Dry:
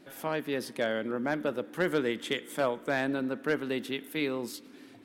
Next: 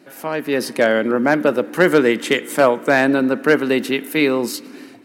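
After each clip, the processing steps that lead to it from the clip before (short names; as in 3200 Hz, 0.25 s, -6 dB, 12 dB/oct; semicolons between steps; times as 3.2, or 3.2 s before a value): AGC gain up to 8 dB; HPF 150 Hz 12 dB/oct; notch 3400 Hz, Q 6.5; gain +7 dB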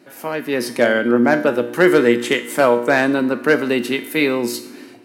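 resonator 120 Hz, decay 0.57 s, harmonics all, mix 70%; gain +8 dB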